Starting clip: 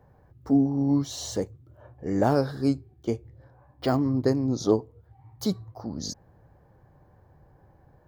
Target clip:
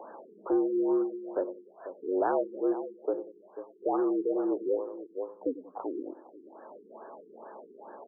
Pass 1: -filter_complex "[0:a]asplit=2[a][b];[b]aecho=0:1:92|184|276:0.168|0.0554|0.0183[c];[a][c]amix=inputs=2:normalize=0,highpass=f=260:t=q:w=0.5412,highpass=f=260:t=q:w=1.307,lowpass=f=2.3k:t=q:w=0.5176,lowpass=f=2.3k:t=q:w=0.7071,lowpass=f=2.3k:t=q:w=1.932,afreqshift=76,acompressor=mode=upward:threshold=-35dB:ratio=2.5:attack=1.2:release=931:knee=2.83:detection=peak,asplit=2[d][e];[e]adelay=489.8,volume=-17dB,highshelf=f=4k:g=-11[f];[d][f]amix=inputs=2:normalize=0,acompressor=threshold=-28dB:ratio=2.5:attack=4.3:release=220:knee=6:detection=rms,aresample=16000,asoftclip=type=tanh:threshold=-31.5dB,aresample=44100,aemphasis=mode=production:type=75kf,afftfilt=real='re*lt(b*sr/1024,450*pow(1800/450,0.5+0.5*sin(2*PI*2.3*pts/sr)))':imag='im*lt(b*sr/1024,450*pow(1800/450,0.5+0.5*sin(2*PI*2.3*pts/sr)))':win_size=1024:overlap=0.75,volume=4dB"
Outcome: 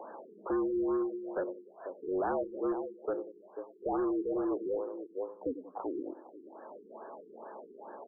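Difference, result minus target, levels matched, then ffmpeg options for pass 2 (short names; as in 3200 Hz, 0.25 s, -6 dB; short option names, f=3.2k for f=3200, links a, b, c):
soft clip: distortion +14 dB
-filter_complex "[0:a]asplit=2[a][b];[b]aecho=0:1:92|184|276:0.168|0.0554|0.0183[c];[a][c]amix=inputs=2:normalize=0,highpass=f=260:t=q:w=0.5412,highpass=f=260:t=q:w=1.307,lowpass=f=2.3k:t=q:w=0.5176,lowpass=f=2.3k:t=q:w=0.7071,lowpass=f=2.3k:t=q:w=1.932,afreqshift=76,acompressor=mode=upward:threshold=-35dB:ratio=2.5:attack=1.2:release=931:knee=2.83:detection=peak,asplit=2[d][e];[e]adelay=489.8,volume=-17dB,highshelf=f=4k:g=-11[f];[d][f]amix=inputs=2:normalize=0,acompressor=threshold=-28dB:ratio=2.5:attack=4.3:release=220:knee=6:detection=rms,aresample=16000,asoftclip=type=tanh:threshold=-20.5dB,aresample=44100,aemphasis=mode=production:type=75kf,afftfilt=real='re*lt(b*sr/1024,450*pow(1800/450,0.5+0.5*sin(2*PI*2.3*pts/sr)))':imag='im*lt(b*sr/1024,450*pow(1800/450,0.5+0.5*sin(2*PI*2.3*pts/sr)))':win_size=1024:overlap=0.75,volume=4dB"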